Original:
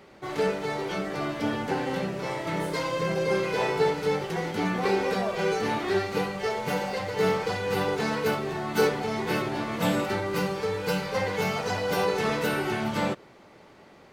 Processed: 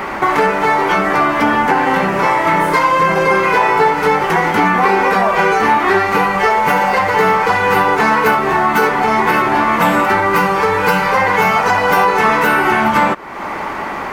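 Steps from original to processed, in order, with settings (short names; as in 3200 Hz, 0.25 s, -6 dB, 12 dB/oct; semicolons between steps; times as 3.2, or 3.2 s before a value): graphic EQ 125/500/1000/2000/4000/8000 Hz -10/-6/+9/+4/-8/-4 dB; compressor 3:1, threshold -44 dBFS, peak gain reduction 18.5 dB; maximiser +29.5 dB; gain -1 dB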